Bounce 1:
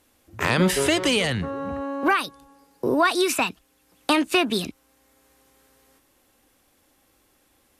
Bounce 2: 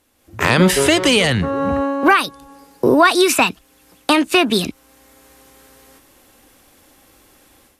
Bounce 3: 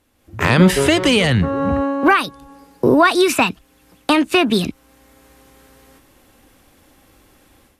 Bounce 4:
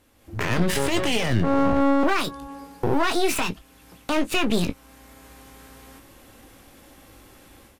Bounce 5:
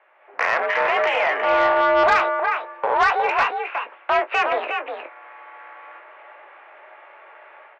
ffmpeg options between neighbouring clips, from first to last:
ffmpeg -i in.wav -af "dynaudnorm=framelen=150:gausssize=3:maxgain=12dB" out.wav
ffmpeg -i in.wav -af "bass=frequency=250:gain=5,treble=frequency=4000:gain=-4,volume=-1dB" out.wav
ffmpeg -i in.wav -filter_complex "[0:a]alimiter=limit=-13.5dB:level=0:latency=1:release=110,aeval=exprs='clip(val(0),-1,0.0158)':channel_layout=same,asplit=2[link_01][link_02];[link_02]aecho=0:1:18|29:0.316|0.141[link_03];[link_01][link_03]amix=inputs=2:normalize=0,volume=2dB" out.wav
ffmpeg -i in.wav -af "aecho=1:1:361:0.473,highpass=frequency=550:width_type=q:width=0.5412,highpass=frequency=550:width_type=q:width=1.307,lowpass=frequency=2300:width_type=q:width=0.5176,lowpass=frequency=2300:width_type=q:width=0.7071,lowpass=frequency=2300:width_type=q:width=1.932,afreqshift=65,aeval=exprs='0.237*(cos(1*acos(clip(val(0)/0.237,-1,1)))-cos(1*PI/2))+0.0266*(cos(5*acos(clip(val(0)/0.237,-1,1)))-cos(5*PI/2))':channel_layout=same,volume=6dB" out.wav

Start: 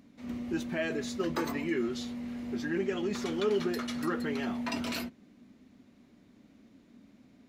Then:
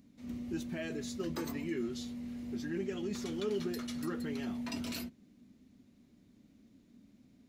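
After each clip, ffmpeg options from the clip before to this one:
ffmpeg -i in.wav -af "equalizer=frequency=1100:width=0.32:gain=-10.5" out.wav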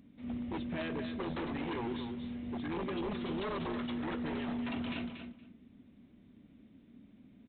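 ffmpeg -i in.wav -af "aresample=8000,aeval=exprs='0.0178*(abs(mod(val(0)/0.0178+3,4)-2)-1)':channel_layout=same,aresample=44100,aecho=1:1:234|468:0.398|0.0597,volume=3dB" out.wav

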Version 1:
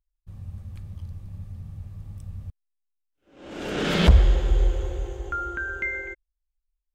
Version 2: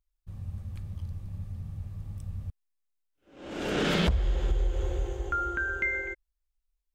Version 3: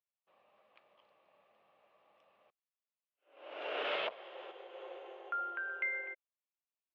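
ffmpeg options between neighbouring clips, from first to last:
ffmpeg -i in.wav -af "acompressor=threshold=-22dB:ratio=12" out.wav
ffmpeg -i in.wav -af "highpass=frequency=490:width=0.5412,highpass=frequency=490:width=1.3066,equalizer=frequency=630:width_type=q:width=4:gain=6,equalizer=frequency=1100:width_type=q:width=4:gain=4,equalizer=frequency=1600:width_type=q:width=4:gain=-3,equalizer=frequency=2700:width_type=q:width=4:gain=5,lowpass=frequency=3200:width=0.5412,lowpass=frequency=3200:width=1.3066,volume=-7dB" out.wav

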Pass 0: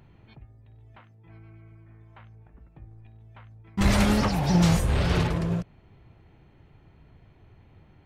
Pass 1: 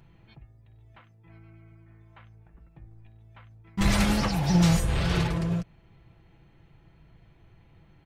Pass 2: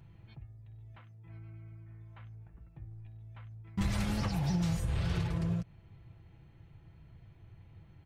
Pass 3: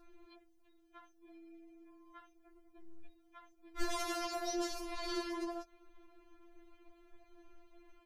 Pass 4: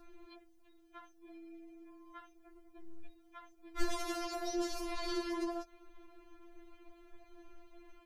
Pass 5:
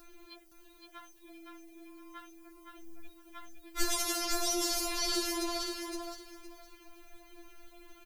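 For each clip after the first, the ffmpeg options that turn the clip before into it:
ffmpeg -i in.wav -af "equalizer=frequency=420:width=0.33:gain=-4,aecho=1:1:6:0.38" out.wav
ffmpeg -i in.wav -af "equalizer=frequency=94:width=1.3:gain=10.5,acompressor=threshold=-24dB:ratio=6,volume=-4.5dB" out.wav
ffmpeg -i in.wav -af "afftfilt=real='re*4*eq(mod(b,16),0)':imag='im*4*eq(mod(b,16),0)':win_size=2048:overlap=0.75,volume=4.5dB" out.wav
ffmpeg -i in.wav -filter_complex "[0:a]acrossover=split=360[link_01][link_02];[link_02]acompressor=threshold=-43dB:ratio=5[link_03];[link_01][link_03]amix=inputs=2:normalize=0,volume=4dB" out.wav
ffmpeg -i in.wav -af "crystalizer=i=5:c=0,aecho=1:1:515|1030|1545:0.596|0.119|0.0238" out.wav

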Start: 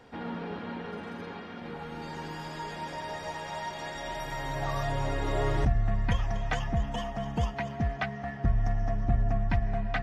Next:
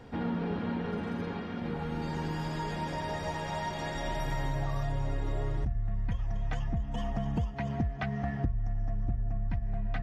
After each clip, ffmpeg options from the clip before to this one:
ffmpeg -i in.wav -af "lowshelf=frequency=290:gain=11,acompressor=threshold=-27dB:ratio=16" out.wav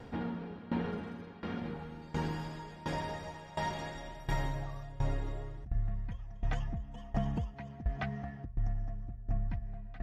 ffmpeg -i in.wav -af "aeval=exprs='val(0)*pow(10,-19*if(lt(mod(1.4*n/s,1),2*abs(1.4)/1000),1-mod(1.4*n/s,1)/(2*abs(1.4)/1000),(mod(1.4*n/s,1)-2*abs(1.4)/1000)/(1-2*abs(1.4)/1000))/20)':channel_layout=same,volume=2dB" out.wav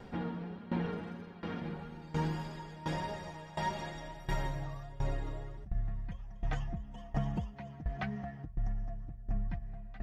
ffmpeg -i in.wav -af "flanger=delay=4.9:depth=1.7:regen=46:speed=1.6:shape=triangular,volume=3.5dB" out.wav

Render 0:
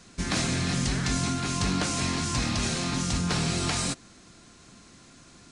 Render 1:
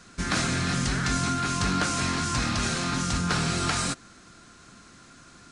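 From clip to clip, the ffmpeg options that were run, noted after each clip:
ffmpeg -i in.wav -af "equalizer=frequency=1400:width=2.6:gain=8.5" out.wav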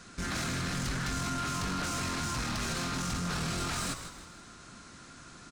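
ffmpeg -i in.wav -filter_complex "[0:a]alimiter=limit=-21.5dB:level=0:latency=1:release=49,asoftclip=type=tanh:threshold=-30dB,asplit=2[link_01][link_02];[link_02]asplit=4[link_03][link_04][link_05][link_06];[link_03]adelay=158,afreqshift=-110,volume=-9.5dB[link_07];[link_04]adelay=316,afreqshift=-220,volume=-17.2dB[link_08];[link_05]adelay=474,afreqshift=-330,volume=-25dB[link_09];[link_06]adelay=632,afreqshift=-440,volume=-32.7dB[link_10];[link_07][link_08][link_09][link_10]amix=inputs=4:normalize=0[link_11];[link_01][link_11]amix=inputs=2:normalize=0" out.wav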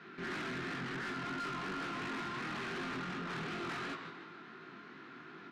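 ffmpeg -i in.wav -af "flanger=delay=18.5:depth=5.8:speed=2.8,highpass=frequency=160:width=0.5412,highpass=frequency=160:width=1.3066,equalizer=frequency=190:width_type=q:width=4:gain=-4,equalizer=frequency=380:width_type=q:width=4:gain=9,equalizer=frequency=560:width_type=q:width=4:gain=-9,equalizer=frequency=1800:width_type=q:width=4:gain=4,lowpass=frequency=3200:width=0.5412,lowpass=frequency=3200:width=1.3066,asoftclip=type=tanh:threshold=-39.5dB,volume=3dB" out.wav

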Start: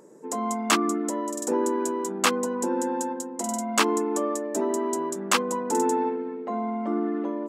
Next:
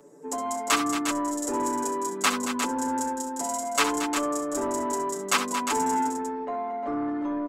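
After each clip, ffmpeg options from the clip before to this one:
ffmpeg -i in.wav -filter_complex "[0:a]aecho=1:1:7:0.98,aecho=1:1:65|76|226|354:0.282|0.178|0.316|0.422,acrossover=split=160|930|4500[link_01][link_02][link_03][link_04];[link_02]asoftclip=type=tanh:threshold=-22.5dB[link_05];[link_01][link_05][link_03][link_04]amix=inputs=4:normalize=0,volume=-3.5dB" out.wav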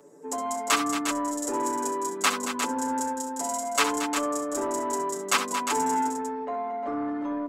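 ffmpeg -i in.wav -af "lowshelf=frequency=91:gain=-6,bandreject=frequency=50:width_type=h:width=6,bandreject=frequency=100:width_type=h:width=6,bandreject=frequency=150:width_type=h:width=6,bandreject=frequency=200:width_type=h:width=6,bandreject=frequency=250:width_type=h:width=6,bandreject=frequency=300:width_type=h:width=6,bandreject=frequency=350:width_type=h:width=6" out.wav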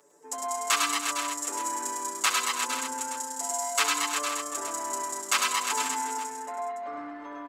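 ffmpeg -i in.wav -filter_complex "[0:a]highpass=frequency=180:poles=1,equalizer=frequency=240:width_type=o:width=2.9:gain=-14,asplit=2[link_01][link_02];[link_02]aecho=0:1:103|106|227|515:0.562|0.422|0.473|0.237[link_03];[link_01][link_03]amix=inputs=2:normalize=0" out.wav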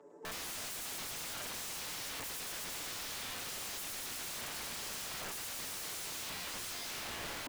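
ffmpeg -i in.wav -af "asoftclip=type=hard:threshold=-27dB,bandpass=frequency=260:width_type=q:width=0.56:csg=0,aeval=exprs='(mod(188*val(0)+1,2)-1)/188':channel_layout=same,volume=8dB" out.wav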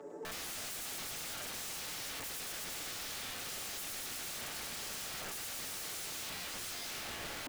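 ffmpeg -i in.wav -af "bandreject=frequency=1000:width=12,alimiter=level_in=22.5dB:limit=-24dB:level=0:latency=1,volume=-22.5dB,volume=9.5dB" out.wav

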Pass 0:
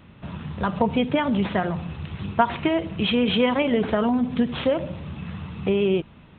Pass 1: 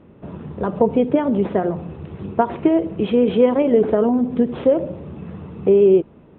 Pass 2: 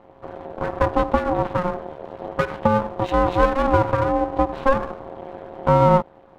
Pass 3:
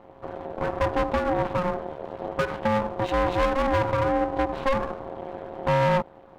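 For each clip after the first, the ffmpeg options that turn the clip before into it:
ffmpeg -i in.wav -af "lowpass=frequency=1300:poles=1,equalizer=frequency=410:width=0.87:gain=14,volume=-3.5dB" out.wav
ffmpeg -i in.wav -af "aeval=exprs='max(val(0),0)':channel_layout=same,aeval=exprs='val(0)*sin(2*PI*540*n/s)':channel_layout=same,volume=3.5dB" out.wav
ffmpeg -i in.wav -af "asoftclip=type=tanh:threshold=-14.5dB" out.wav

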